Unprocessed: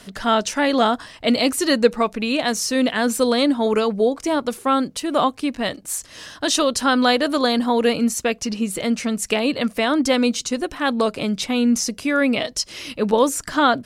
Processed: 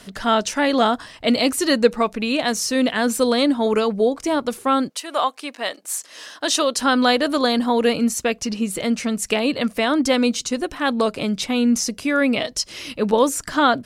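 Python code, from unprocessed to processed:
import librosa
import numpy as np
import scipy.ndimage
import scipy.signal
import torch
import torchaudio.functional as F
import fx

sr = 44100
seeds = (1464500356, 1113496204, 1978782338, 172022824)

y = fx.highpass(x, sr, hz=fx.line((4.88, 740.0), (6.77, 290.0)), slope=12, at=(4.88, 6.77), fade=0.02)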